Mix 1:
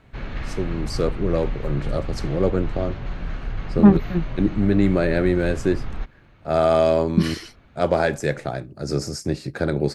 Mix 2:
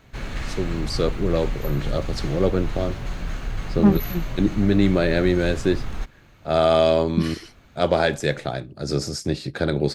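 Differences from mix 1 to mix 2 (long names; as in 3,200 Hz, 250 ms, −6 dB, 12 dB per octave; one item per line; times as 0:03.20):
first voice: add parametric band 3,500 Hz +9.5 dB 0.67 octaves
second voice −4.0 dB
background: remove high-frequency loss of the air 210 metres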